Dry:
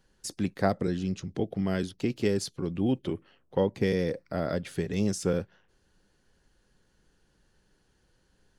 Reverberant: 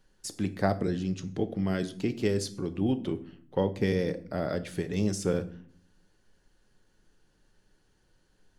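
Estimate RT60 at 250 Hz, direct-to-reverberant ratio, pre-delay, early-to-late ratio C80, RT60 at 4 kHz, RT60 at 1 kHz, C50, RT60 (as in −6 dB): 0.85 s, 10.5 dB, 3 ms, 20.0 dB, 0.40 s, 0.45 s, 16.0 dB, 0.50 s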